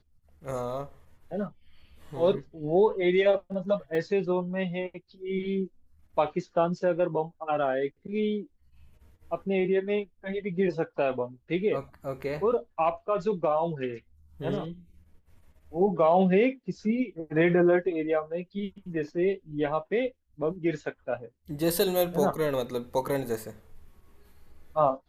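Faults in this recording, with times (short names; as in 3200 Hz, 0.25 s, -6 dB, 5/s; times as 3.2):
3.95 gap 2 ms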